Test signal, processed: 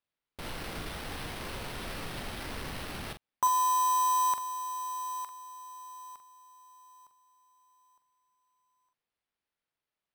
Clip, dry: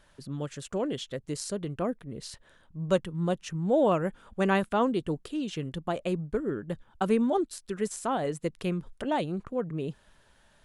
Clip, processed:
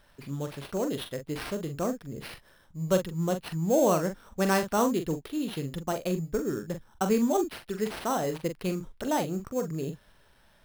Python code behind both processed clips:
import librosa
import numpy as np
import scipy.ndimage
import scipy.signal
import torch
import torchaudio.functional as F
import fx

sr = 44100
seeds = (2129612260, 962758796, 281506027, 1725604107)

y = fx.sample_hold(x, sr, seeds[0], rate_hz=7000.0, jitter_pct=0)
y = fx.doubler(y, sr, ms=43.0, db=-8.0)